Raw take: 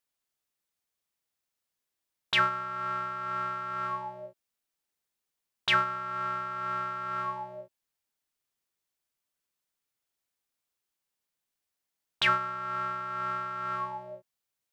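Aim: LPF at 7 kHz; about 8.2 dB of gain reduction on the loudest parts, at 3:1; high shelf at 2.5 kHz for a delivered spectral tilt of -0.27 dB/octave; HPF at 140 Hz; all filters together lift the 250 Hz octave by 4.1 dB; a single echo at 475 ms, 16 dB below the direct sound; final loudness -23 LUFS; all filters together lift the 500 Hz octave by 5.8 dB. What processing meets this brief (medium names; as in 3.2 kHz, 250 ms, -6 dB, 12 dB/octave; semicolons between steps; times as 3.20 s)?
high-pass 140 Hz; low-pass 7 kHz; peaking EQ 250 Hz +5 dB; peaking EQ 500 Hz +6.5 dB; treble shelf 2.5 kHz +6.5 dB; compression 3:1, threshold -28 dBFS; delay 475 ms -16 dB; trim +9 dB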